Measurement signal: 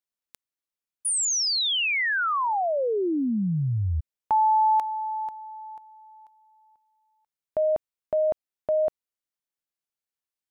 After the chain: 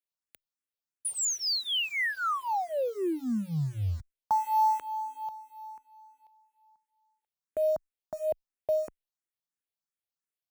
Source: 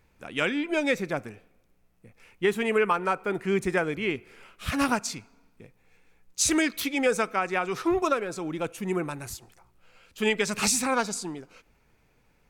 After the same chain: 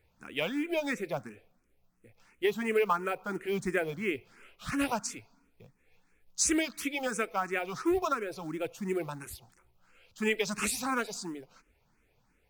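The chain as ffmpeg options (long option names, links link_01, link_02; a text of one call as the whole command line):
ffmpeg -i in.wav -filter_complex "[0:a]acrusher=bits=6:mode=log:mix=0:aa=0.000001,asplit=2[link_01][link_02];[link_02]afreqshift=2.9[link_03];[link_01][link_03]amix=inputs=2:normalize=1,volume=-2.5dB" out.wav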